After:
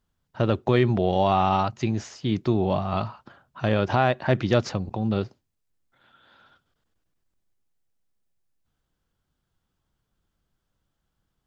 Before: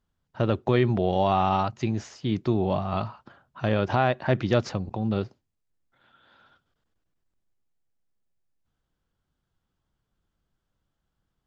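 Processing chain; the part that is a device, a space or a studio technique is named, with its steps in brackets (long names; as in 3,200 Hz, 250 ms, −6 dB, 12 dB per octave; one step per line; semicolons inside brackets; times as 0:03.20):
exciter from parts (in parallel at −8.5 dB: high-pass filter 4,400 Hz 6 dB per octave + soft clipping −30.5 dBFS, distortion −14 dB)
on the sum: level +1.5 dB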